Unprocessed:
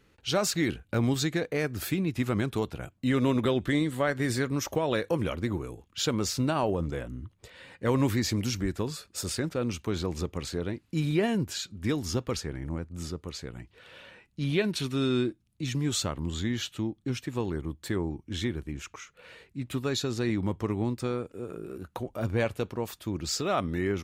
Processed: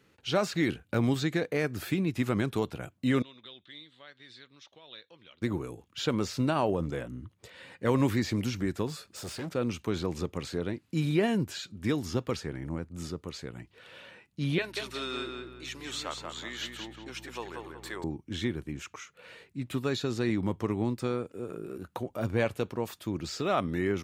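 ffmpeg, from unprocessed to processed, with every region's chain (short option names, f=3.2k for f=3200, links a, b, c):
-filter_complex "[0:a]asettb=1/sr,asplit=3[a][b][c];[a]atrim=end=3.224[d];[b]atrim=start=3.22:end=5.42,asetpts=PTS-STARTPTS,afade=t=in:d=0.004:c=qsin,afade=t=out:st=2.196:d=0.004:c=qsin,bandpass=f=3.7k:t=q:w=4.8,aemphasis=mode=reproduction:type=riaa[e];[c]atrim=start=5.416[f];[d][e]acrossfade=d=0.004:c1=hsin:c2=qsin[g];[g][f]acrossfade=d=0.004:c1=qsin:c2=hsin,asettb=1/sr,asplit=3[h][i][j];[h]atrim=end=8.874[k];[i]atrim=start=8.87:end=9.52,asetpts=PTS-STARTPTS,afade=t=in:d=0.004:c=qsin,afade=t=out:st=0.646:d=0.004:c=qsin,acompressor=mode=upward:threshold=-49dB:ratio=2.5:attack=3.2:release=140:knee=2.83:detection=peak,asoftclip=type=hard:threshold=-33dB[l];[j]atrim=start=9.516[m];[k][l]acrossfade=d=0.004:c1=hsin:c2=qsin[n];[n][m]acrossfade=d=0.004:c1=qsin:c2=hsin,asettb=1/sr,asplit=3[o][p][q];[o]atrim=end=14.584[r];[p]atrim=start=14.58:end=18.04,asetpts=PTS-STARTPTS,afade=t=in:d=0.004:c=qsin,afade=t=out:st=3.456:d=0.004:c=qsin,highpass=670,aeval=exprs='val(0)+0.00398*(sin(2*PI*60*n/s)+sin(2*PI*2*60*n/s)/2+sin(2*PI*3*60*n/s)/3+sin(2*PI*4*60*n/s)/4+sin(2*PI*5*60*n/s)/5)':c=same,asplit=2[s][t];[t]adelay=185,lowpass=f=2.6k:p=1,volume=-3.5dB,asplit=2[u][v];[v]adelay=185,lowpass=f=2.6k:p=1,volume=0.39,asplit=2[w][x];[x]adelay=185,lowpass=f=2.6k:p=1,volume=0.39,asplit=2[y][z];[z]adelay=185,lowpass=f=2.6k:p=1,volume=0.39,asplit=2[aa][ab];[ab]adelay=185,lowpass=f=2.6k:p=1,volume=0.39[ac];[s][u][w][y][aa][ac]amix=inputs=6:normalize=0,atrim=end_sample=152586[ad];[q]atrim=start=18.036[ae];[r][ad]acrossfade=d=0.004:c1=hsin:c2=qsin[af];[af][ae]acrossfade=d=0.004:c1=qsin:c2=hsin,highpass=97,acrossover=split=3700[ag][ah];[ah]acompressor=threshold=-42dB:ratio=4:attack=1:release=60[ai];[ag][ai]amix=inputs=2:normalize=0"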